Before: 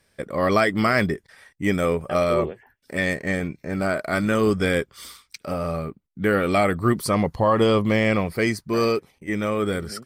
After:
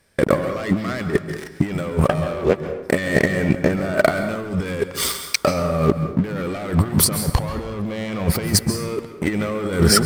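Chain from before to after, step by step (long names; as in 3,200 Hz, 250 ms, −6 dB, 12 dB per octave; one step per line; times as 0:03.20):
parametric band 3,700 Hz −2.5 dB 1.8 octaves
leveller curve on the samples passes 3
compressor whose output falls as the input rises −21 dBFS, ratio −0.5
dense smooth reverb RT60 0.9 s, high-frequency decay 0.65×, pre-delay 120 ms, DRR 8.5 dB
level +2 dB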